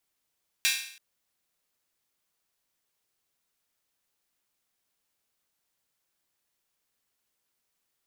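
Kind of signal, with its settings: open hi-hat length 0.33 s, high-pass 2.3 kHz, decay 0.60 s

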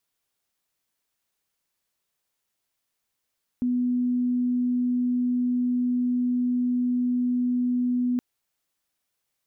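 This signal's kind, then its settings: tone sine 247 Hz -21 dBFS 4.57 s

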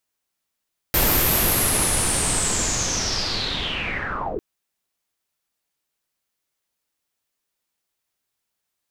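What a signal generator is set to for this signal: swept filtered noise pink, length 3.45 s lowpass, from 14 kHz, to 330 Hz, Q 7.5, linear, gain ramp -11.5 dB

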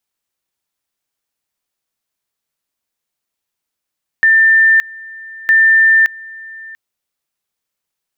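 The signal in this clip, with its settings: two-level tone 1.79 kHz -6 dBFS, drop 23 dB, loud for 0.57 s, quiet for 0.69 s, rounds 2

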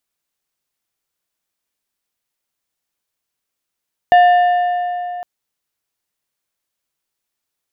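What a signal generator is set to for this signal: metal hit plate, length 1.11 s, lowest mode 712 Hz, decay 3.42 s, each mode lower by 11 dB, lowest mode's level -5 dB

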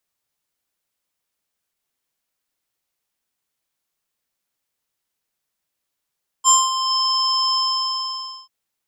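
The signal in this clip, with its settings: synth note square C6 12 dB/octave, low-pass 5.5 kHz, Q 11, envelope 0.5 oct, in 0.48 s, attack 40 ms, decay 0.22 s, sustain -8 dB, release 0.93 s, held 1.11 s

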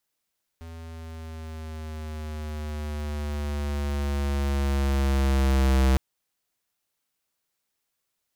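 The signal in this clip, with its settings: gliding synth tone square, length 5.36 s, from 82.6 Hz, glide -4 st, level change +21.5 dB, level -19 dB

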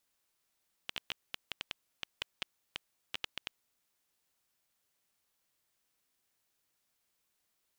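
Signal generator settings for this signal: random clicks 7.3 per s -18.5 dBFS 2.92 s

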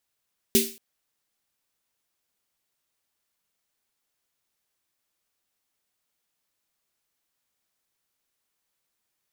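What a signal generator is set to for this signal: snare drum length 0.23 s, tones 230 Hz, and 390 Hz, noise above 2.4 kHz, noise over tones 0 dB, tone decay 0.31 s, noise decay 0.39 s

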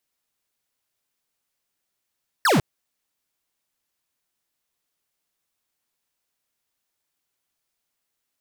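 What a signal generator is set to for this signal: laser zap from 1.9 kHz, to 110 Hz, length 0.15 s square, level -17.5 dB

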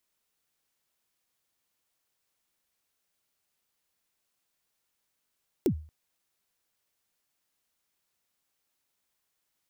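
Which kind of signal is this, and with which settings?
kick drum length 0.23 s, from 430 Hz, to 77 Hz, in 83 ms, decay 0.40 s, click on, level -18 dB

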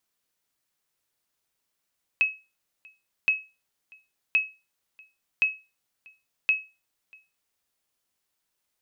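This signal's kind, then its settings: sonar ping 2.57 kHz, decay 0.28 s, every 1.07 s, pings 5, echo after 0.64 s, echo -28.5 dB -14 dBFS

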